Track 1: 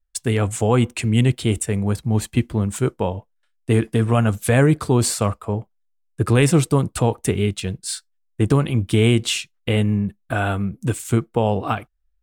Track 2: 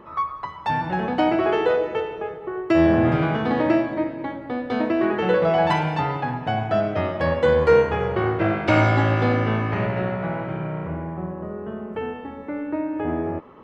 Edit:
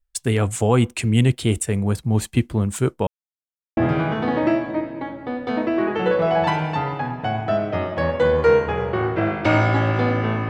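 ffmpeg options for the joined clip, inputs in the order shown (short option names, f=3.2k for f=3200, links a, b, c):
-filter_complex "[0:a]apad=whole_dur=10.49,atrim=end=10.49,asplit=2[a][b];[a]atrim=end=3.07,asetpts=PTS-STARTPTS,afade=t=out:st=3.066:d=0.004:c=hsin[c];[b]atrim=start=3.07:end=3.77,asetpts=PTS-STARTPTS,volume=0[d];[1:a]atrim=start=3:end=9.72,asetpts=PTS-STARTPTS,afade=t=in:d=0.004:c=hsin[e];[c][d][e]concat=n=3:v=0:a=1"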